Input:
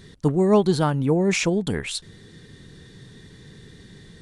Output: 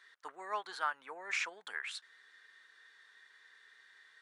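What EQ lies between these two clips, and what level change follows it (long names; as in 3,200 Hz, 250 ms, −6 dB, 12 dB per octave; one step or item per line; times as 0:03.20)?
four-pole ladder high-pass 1,500 Hz, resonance 25%
spectral tilt −4.5 dB per octave
high shelf with overshoot 1,900 Hz −7.5 dB, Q 1.5
+8.5 dB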